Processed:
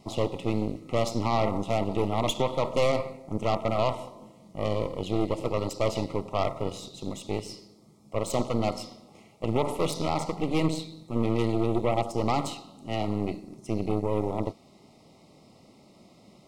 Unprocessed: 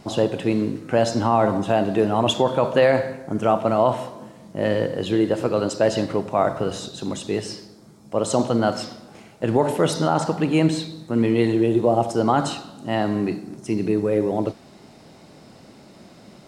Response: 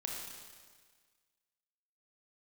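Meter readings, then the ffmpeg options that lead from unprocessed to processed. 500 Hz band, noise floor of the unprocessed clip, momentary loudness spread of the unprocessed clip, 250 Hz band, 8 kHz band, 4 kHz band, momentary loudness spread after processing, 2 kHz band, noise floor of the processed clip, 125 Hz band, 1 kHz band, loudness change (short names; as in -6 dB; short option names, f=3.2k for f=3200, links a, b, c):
-8.0 dB, -48 dBFS, 10 LU, -8.0 dB, -6.5 dB, -6.0 dB, 10 LU, -8.5 dB, -56 dBFS, -4.5 dB, -7.0 dB, -7.5 dB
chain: -af "aeval=exprs='0.473*(cos(1*acos(clip(val(0)/0.473,-1,1)))-cos(1*PI/2))+0.0944*(cos(6*acos(clip(val(0)/0.473,-1,1)))-cos(6*PI/2))':c=same,asuperstop=centerf=1600:order=12:qfactor=2.7,volume=-8.5dB"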